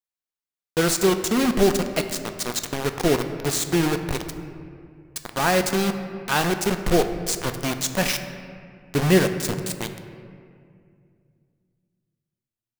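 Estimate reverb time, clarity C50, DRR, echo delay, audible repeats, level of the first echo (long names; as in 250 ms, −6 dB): 2.3 s, 9.0 dB, 7.0 dB, no echo audible, no echo audible, no echo audible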